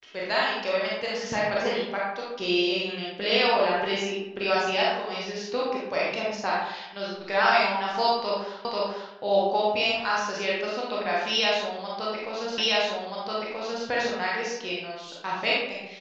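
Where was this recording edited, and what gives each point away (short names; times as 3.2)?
8.65 repeat of the last 0.49 s
12.58 repeat of the last 1.28 s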